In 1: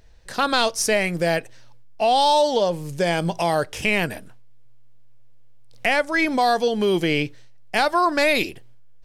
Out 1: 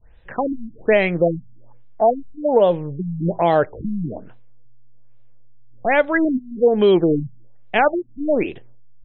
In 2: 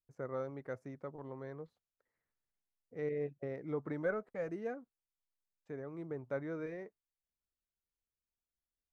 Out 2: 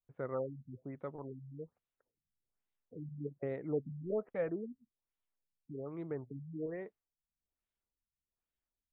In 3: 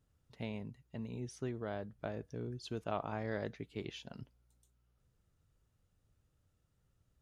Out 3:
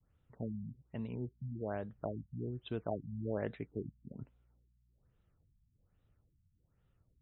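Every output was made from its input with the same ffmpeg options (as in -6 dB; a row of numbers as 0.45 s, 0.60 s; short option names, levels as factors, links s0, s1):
-af "adynamicequalizer=threshold=0.0178:dfrequency=440:dqfactor=0.78:tfrequency=440:tqfactor=0.78:attack=5:release=100:ratio=0.375:range=2.5:mode=boostabove:tftype=bell,afftfilt=real='re*lt(b*sr/1024,220*pow(4100/220,0.5+0.5*sin(2*PI*1.2*pts/sr)))':imag='im*lt(b*sr/1024,220*pow(4100/220,0.5+0.5*sin(2*PI*1.2*pts/sr)))':win_size=1024:overlap=0.75,volume=1.26"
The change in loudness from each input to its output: +1.5 LU, 0.0 LU, +0.5 LU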